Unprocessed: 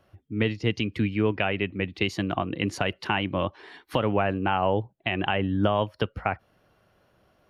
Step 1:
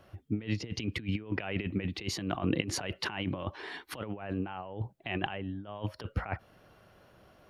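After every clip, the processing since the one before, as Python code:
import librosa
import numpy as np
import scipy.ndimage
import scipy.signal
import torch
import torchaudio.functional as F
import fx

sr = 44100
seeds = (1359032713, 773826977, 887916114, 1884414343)

y = fx.over_compress(x, sr, threshold_db=-31.0, ratio=-0.5)
y = y * librosa.db_to_amplitude(-2.0)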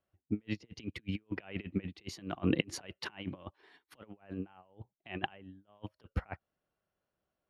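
y = fx.peak_eq(x, sr, hz=110.0, db=-6.0, octaves=0.35)
y = fx.upward_expand(y, sr, threshold_db=-47.0, expansion=2.5)
y = y * librosa.db_to_amplitude(3.5)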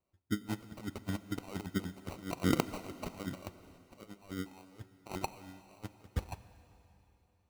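y = fx.sample_hold(x, sr, seeds[0], rate_hz=1700.0, jitter_pct=0)
y = fx.rev_plate(y, sr, seeds[1], rt60_s=3.2, hf_ratio=1.0, predelay_ms=0, drr_db=13.0)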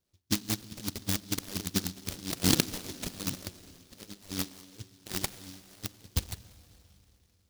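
y = fx.rattle_buzz(x, sr, strikes_db=-34.0, level_db=-21.0)
y = fx.noise_mod_delay(y, sr, seeds[2], noise_hz=4500.0, depth_ms=0.36)
y = y * librosa.db_to_amplitude(4.0)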